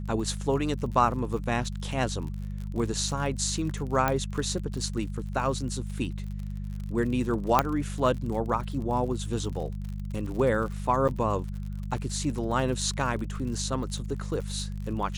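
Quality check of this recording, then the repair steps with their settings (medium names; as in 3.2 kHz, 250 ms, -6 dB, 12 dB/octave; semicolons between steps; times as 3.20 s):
crackle 54 per s -35 dBFS
hum 50 Hz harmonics 4 -34 dBFS
4.08 s: pop -11 dBFS
7.59 s: pop -6 dBFS
11.08–11.09 s: dropout 7.5 ms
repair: de-click; de-hum 50 Hz, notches 4; interpolate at 11.08 s, 7.5 ms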